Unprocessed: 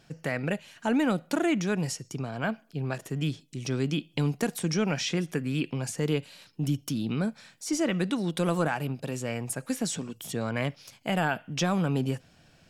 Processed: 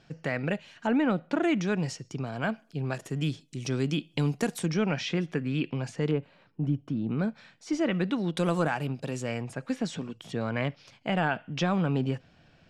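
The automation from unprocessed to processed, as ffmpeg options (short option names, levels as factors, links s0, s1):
-af "asetnsamples=n=441:p=0,asendcmd='0.87 lowpass f 2800;1.43 lowpass f 5100;2.27 lowpass f 10000;4.66 lowpass f 3800;6.11 lowpass f 1400;7.19 lowpass f 3500;8.37 lowpass f 7800;9.42 lowpass f 3800',lowpass=5100"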